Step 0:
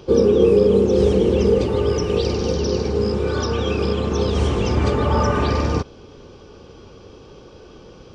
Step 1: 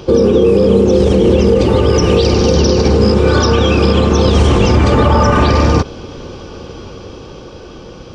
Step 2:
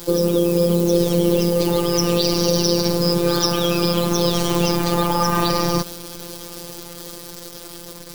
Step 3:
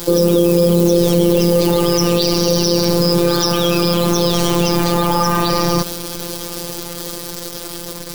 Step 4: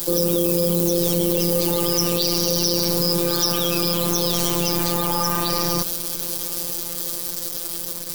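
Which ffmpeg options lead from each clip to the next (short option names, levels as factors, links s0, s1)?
-af "bandreject=f=420:w=12,dynaudnorm=f=340:g=9:m=1.68,alimiter=level_in=3.98:limit=0.891:release=50:level=0:latency=1,volume=0.891"
-af "acrusher=bits=6:dc=4:mix=0:aa=0.000001,afftfilt=real='hypot(re,im)*cos(PI*b)':imag='0':win_size=1024:overlap=0.75,aexciter=amount=2.6:drive=6.1:freq=3800,volume=0.596"
-af "alimiter=limit=0.355:level=0:latency=1:release=18,volume=2.51"
-af "crystalizer=i=2:c=0,volume=0.376"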